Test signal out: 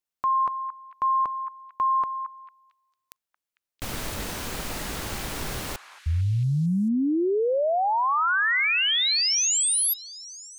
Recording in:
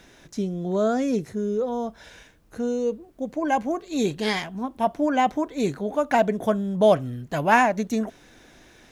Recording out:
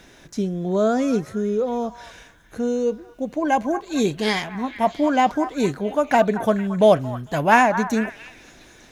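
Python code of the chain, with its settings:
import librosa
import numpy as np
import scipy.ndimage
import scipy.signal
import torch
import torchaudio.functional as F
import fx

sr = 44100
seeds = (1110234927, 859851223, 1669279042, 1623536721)

y = fx.echo_stepped(x, sr, ms=225, hz=1200.0, octaves=0.7, feedback_pct=70, wet_db=-9.0)
y = y * librosa.db_to_amplitude(3.0)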